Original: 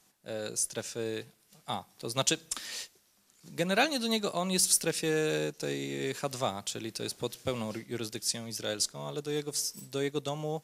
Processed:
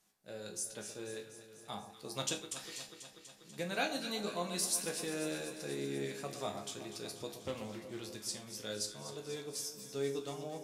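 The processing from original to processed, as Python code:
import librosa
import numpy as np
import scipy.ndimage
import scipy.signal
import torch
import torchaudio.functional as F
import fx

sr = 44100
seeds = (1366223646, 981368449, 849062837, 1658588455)

y = fx.resonator_bank(x, sr, root=37, chord='major', decay_s=0.3)
y = fx.echo_alternate(y, sr, ms=122, hz=1200.0, feedback_pct=83, wet_db=-10)
y = fx.doppler_dist(y, sr, depth_ms=0.17, at=(7.37, 8.03))
y = y * 10.0 ** (2.5 / 20.0)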